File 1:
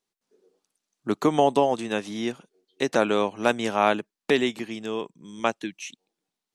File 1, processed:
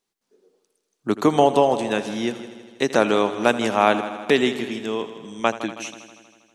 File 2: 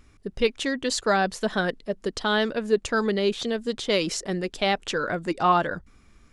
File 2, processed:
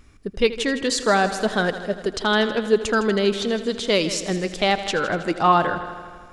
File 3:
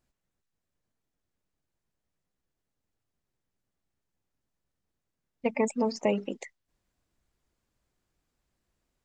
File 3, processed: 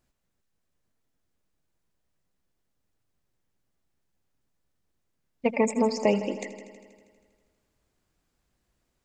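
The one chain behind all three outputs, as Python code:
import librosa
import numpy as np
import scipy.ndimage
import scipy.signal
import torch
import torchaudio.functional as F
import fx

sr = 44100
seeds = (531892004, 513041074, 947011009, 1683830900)

y = fx.echo_heads(x, sr, ms=80, heads='first and second', feedback_pct=61, wet_db=-16.0)
y = F.gain(torch.from_numpy(y), 3.5).numpy()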